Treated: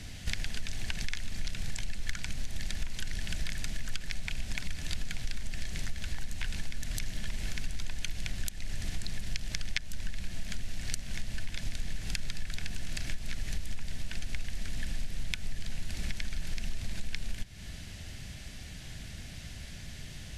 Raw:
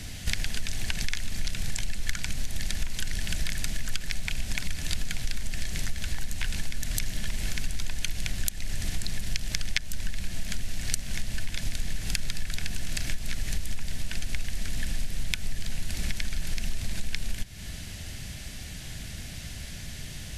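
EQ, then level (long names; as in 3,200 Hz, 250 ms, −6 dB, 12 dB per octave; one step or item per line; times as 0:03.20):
high-shelf EQ 10,000 Hz −10.5 dB
−4.5 dB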